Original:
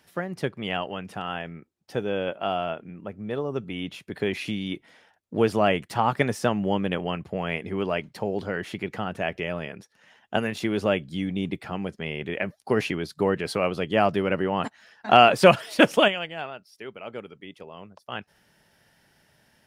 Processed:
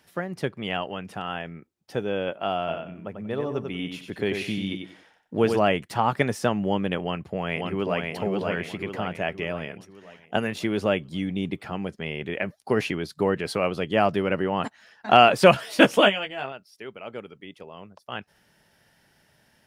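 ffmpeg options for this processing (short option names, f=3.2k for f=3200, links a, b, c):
-filter_complex "[0:a]asplit=3[a][b][c];[a]afade=t=out:st=2.67:d=0.02[d];[b]aecho=1:1:93|186|279:0.501|0.125|0.0313,afade=t=in:st=2.67:d=0.02,afade=t=out:st=5.58:d=0.02[e];[c]afade=t=in:st=5.58:d=0.02[f];[d][e][f]amix=inputs=3:normalize=0,asplit=2[g][h];[h]afade=t=in:st=7.02:d=0.01,afade=t=out:st=8.07:d=0.01,aecho=0:1:540|1080|1620|2160|2700|3240|3780:0.707946|0.353973|0.176986|0.0884932|0.0442466|0.0221233|0.0110617[i];[g][i]amix=inputs=2:normalize=0,asettb=1/sr,asplit=3[j][k][l];[j]atrim=end=15.544[m];[k]atrim=start=15.54:end=16.52,asetpts=PTS-STARTPTS,afade=t=in:d=0.004:c=qsin,afade=t=out:st=0.976:d=0.004:c=qsin,asplit=2[n][o];[o]adelay=15,volume=-4dB[p];[n][p]amix=inputs=2:normalize=0,atrim=end_sample=43218[q];[l]atrim=start=16.516[r];[m][q]acrossfade=d=0.004:c1=hsin:c2=qsin[s];[s][r]acrossfade=d=0.004:c1=qsin:c2=hsin"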